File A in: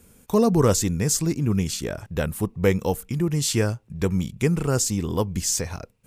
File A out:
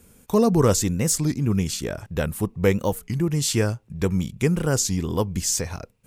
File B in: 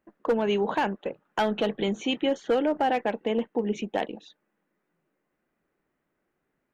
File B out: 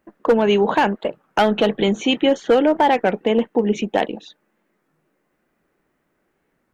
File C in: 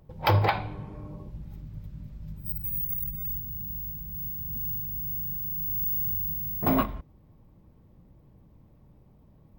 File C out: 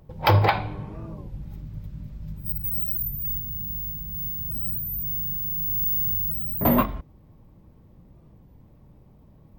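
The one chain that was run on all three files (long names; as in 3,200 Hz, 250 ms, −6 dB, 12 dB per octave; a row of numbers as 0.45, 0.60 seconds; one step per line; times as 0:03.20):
wow of a warped record 33 1/3 rpm, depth 160 cents
normalise the peak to −6 dBFS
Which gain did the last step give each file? +0.5, +9.0, +4.0 decibels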